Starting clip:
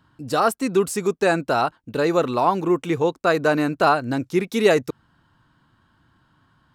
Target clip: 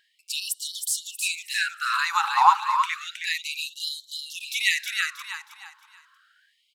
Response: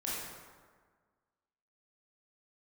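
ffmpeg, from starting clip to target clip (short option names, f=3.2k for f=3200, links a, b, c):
-filter_complex "[0:a]asettb=1/sr,asplit=3[a][b][c];[a]atrim=end=2.314[d];[b]atrim=start=2.31:end=3.01,asetpts=PTS-STARTPTS,afade=t=in:d=0.004:c=qsin,afade=t=out:st=0.696:d=0.004:c=qsin,highshelf=f=11k:g=-9.5[e];[c]atrim=start=3.006[f];[d][e]acrossfade=d=0.004:c1=hsin:c2=qsin[g];[g][f]acrossfade=d=0.004:c1=qsin:c2=hsin,aecho=1:1:317|634|951|1268:0.562|0.191|0.065|0.0221,asplit=2[h][i];[1:a]atrim=start_sample=2205,lowpass=7.8k[j];[i][j]afir=irnorm=-1:irlink=0,volume=-24dB[k];[h][k]amix=inputs=2:normalize=0,afftfilt=real='re*gte(b*sr/1024,770*pow(3000/770,0.5+0.5*sin(2*PI*0.31*pts/sr)))':imag='im*gte(b*sr/1024,770*pow(3000/770,0.5+0.5*sin(2*PI*0.31*pts/sr)))':win_size=1024:overlap=0.75,volume=4.5dB"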